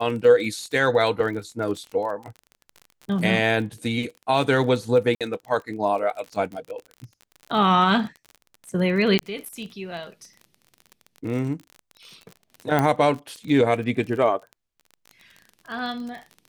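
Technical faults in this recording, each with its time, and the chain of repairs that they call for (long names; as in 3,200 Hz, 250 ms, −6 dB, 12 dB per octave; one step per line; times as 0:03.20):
surface crackle 36 per second −32 dBFS
0:05.15–0:05.21: drop-out 57 ms
0:09.19: click −7 dBFS
0:12.79: click −9 dBFS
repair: click removal
repair the gap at 0:05.15, 57 ms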